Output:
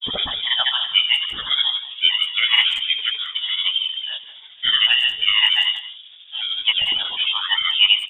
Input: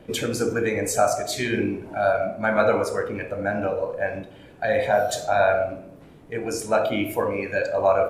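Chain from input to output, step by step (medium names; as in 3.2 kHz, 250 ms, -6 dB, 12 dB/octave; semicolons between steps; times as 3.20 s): granulator 129 ms, grains 13 per s, pitch spread up and down by 3 st; level-controlled noise filter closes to 1.6 kHz, open at -17.5 dBFS; frequency inversion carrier 3.6 kHz; speakerphone echo 180 ms, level -14 dB; trim +5 dB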